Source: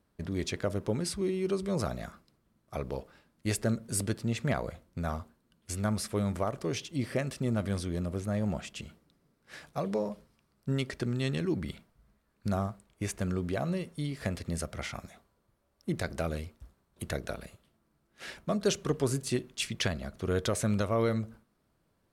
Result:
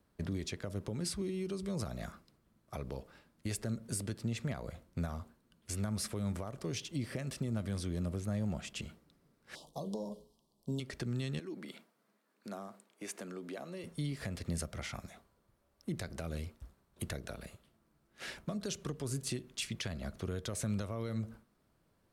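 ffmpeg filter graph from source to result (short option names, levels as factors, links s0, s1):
-filter_complex "[0:a]asettb=1/sr,asplit=3[s0][s1][s2];[s0]atrim=end=9.554[s3];[s1]atrim=start=9.55:end=10.8,asetpts=PTS-STARTPTS,afade=t=in:d=0.004:c=qsin,afade=t=out:st=1.246:d=0.004:c=qsin,asuperstop=centerf=1800:order=12:qfactor=0.91,equalizer=f=93:t=o:w=0.91:g=-14.5,bandreject=f=60:t=h:w=6,bandreject=f=120:t=h:w=6,bandreject=f=180:t=h:w=6,bandreject=f=240:t=h:w=6,bandreject=f=300:t=h:w=6,bandreject=f=360:t=h:w=6,bandreject=f=420:t=h:w=6,bandreject=f=480:t=h:w=6,bandreject=f=540:t=h:w=6[s4];[s2]atrim=start=10.796[s5];[s3][s4]acrossfade=d=0.004:c1=hsin:c2=qsin[s6];[s6][s5]acrossfade=d=0.004:c1=qsin:c2=hsin,asettb=1/sr,asplit=3[s7][s8][s9];[s7]atrim=end=11.394[s10];[s8]atrim=start=11.39:end=13.84,asetpts=PTS-STARTPTS,afade=t=in:d=0.004:c=qsin,afade=t=out:st=2.446:d=0.004:c=qsin,acompressor=threshold=0.01:ratio=2:attack=3.2:release=140:knee=1:detection=peak,highpass=f=230:w=0.5412,highpass=f=230:w=1.3066[s11];[s9]atrim=start=13.836[s12];[s10][s11]acrossfade=d=0.004:c1=hsin:c2=qsin[s13];[s13][s12]acrossfade=d=0.004:c1=qsin:c2=hsin,alimiter=level_in=1.26:limit=0.0631:level=0:latency=1:release=222,volume=0.794,acrossover=split=240|3000[s14][s15][s16];[s15]acompressor=threshold=0.00708:ratio=2.5[s17];[s14][s17][s16]amix=inputs=3:normalize=0"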